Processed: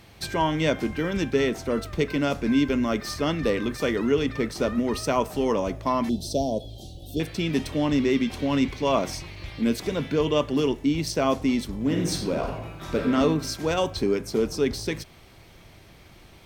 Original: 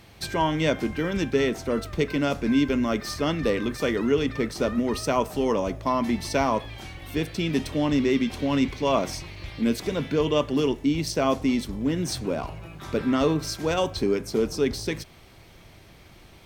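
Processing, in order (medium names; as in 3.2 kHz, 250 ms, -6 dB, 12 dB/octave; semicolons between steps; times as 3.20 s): 6.09–7.20 s: elliptic band-stop 680–3500 Hz, stop band 40 dB; 11.77–13.14 s: reverb throw, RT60 0.8 s, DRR 2 dB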